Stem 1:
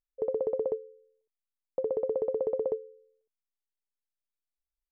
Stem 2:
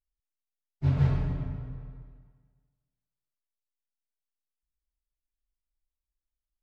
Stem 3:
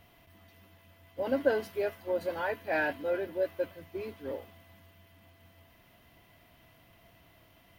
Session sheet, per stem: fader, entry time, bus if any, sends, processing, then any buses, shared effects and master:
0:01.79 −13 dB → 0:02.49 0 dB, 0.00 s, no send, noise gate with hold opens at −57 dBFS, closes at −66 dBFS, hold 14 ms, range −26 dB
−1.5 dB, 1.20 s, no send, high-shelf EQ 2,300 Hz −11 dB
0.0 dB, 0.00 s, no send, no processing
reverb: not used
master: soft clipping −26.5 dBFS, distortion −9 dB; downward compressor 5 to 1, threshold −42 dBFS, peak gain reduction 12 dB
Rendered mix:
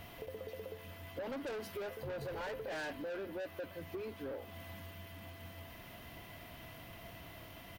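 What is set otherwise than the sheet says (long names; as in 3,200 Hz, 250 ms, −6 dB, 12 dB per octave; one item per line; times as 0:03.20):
stem 2 −1.5 dB → −11.5 dB
stem 3 0.0 dB → +9.0 dB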